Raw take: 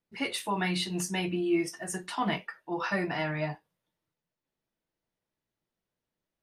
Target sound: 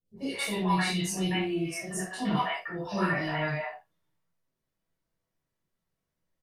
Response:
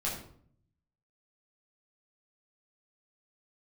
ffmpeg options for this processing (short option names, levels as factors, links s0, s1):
-filter_complex "[0:a]acrossover=split=610|3200[s0][s1][s2];[s2]adelay=50[s3];[s1]adelay=170[s4];[s0][s4][s3]amix=inputs=3:normalize=0[s5];[1:a]atrim=start_sample=2205,atrim=end_sample=3528,asetrate=37926,aresample=44100[s6];[s5][s6]afir=irnorm=-1:irlink=0,volume=0.794"